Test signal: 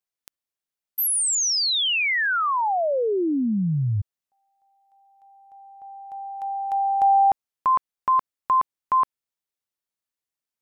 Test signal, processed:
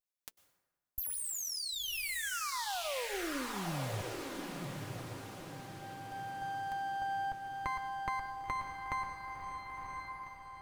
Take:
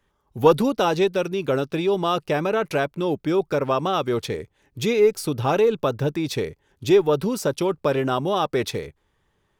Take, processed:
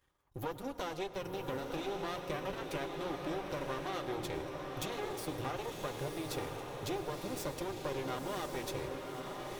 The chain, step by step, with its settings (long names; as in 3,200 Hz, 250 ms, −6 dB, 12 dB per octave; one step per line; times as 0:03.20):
high-shelf EQ 7,700 Hz +6 dB
mains-hum notches 60/120/180/240/300/360/420 Hz
downward compressor 6 to 1, threshold −29 dBFS
half-wave rectification
notch comb filter 220 Hz
on a send: feedback delay with all-pass diffusion 1,017 ms, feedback 51%, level −3.5 dB
on the sum: dense smooth reverb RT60 1.3 s, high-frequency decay 0.55×, pre-delay 90 ms, DRR 13 dB
level −3 dB